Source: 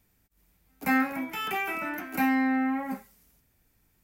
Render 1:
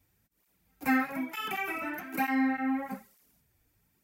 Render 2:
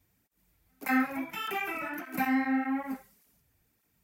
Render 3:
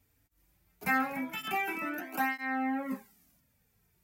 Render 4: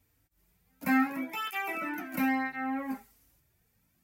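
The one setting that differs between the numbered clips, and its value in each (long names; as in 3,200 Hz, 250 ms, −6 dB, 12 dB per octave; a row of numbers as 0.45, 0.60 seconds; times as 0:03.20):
through-zero flanger with one copy inverted, nulls at: 1.1, 1.7, 0.21, 0.33 Hertz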